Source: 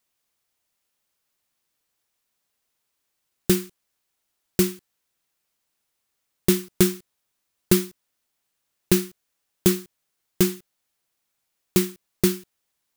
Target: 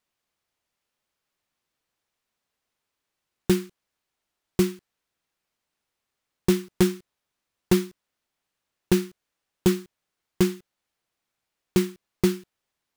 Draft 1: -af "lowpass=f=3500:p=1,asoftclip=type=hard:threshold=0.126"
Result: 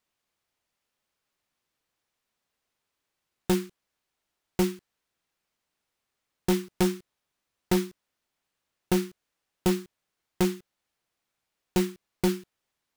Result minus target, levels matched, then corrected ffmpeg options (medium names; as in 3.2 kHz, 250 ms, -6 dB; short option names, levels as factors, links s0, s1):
hard clipper: distortion +10 dB
-af "lowpass=f=3500:p=1,asoftclip=type=hard:threshold=0.299"